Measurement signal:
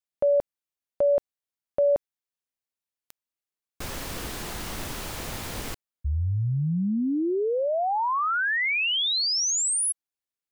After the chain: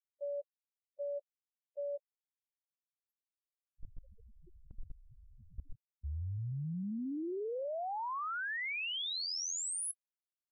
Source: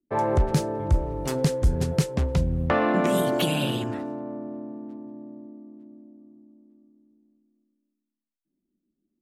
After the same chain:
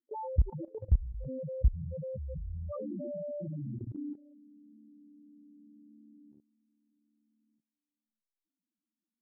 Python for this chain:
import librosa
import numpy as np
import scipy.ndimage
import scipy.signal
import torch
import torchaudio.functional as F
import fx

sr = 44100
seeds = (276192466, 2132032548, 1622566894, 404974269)

y = fx.spec_topn(x, sr, count=2)
y = fx.level_steps(y, sr, step_db=19)